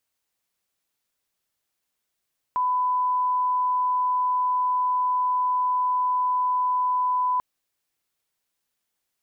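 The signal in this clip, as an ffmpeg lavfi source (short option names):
-f lavfi -i "sine=f=1000:d=4.84:r=44100,volume=-1.94dB"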